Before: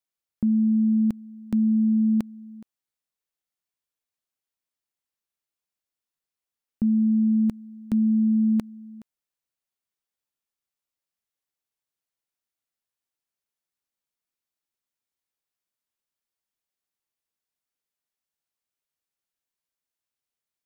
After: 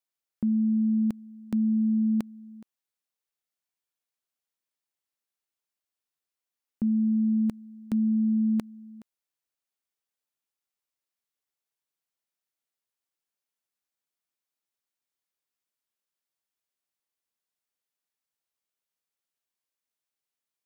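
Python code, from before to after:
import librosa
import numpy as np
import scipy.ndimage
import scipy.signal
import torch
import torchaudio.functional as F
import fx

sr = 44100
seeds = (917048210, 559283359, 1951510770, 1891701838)

y = fx.low_shelf(x, sr, hz=150.0, db=-8.0)
y = y * 10.0 ** (-1.0 / 20.0)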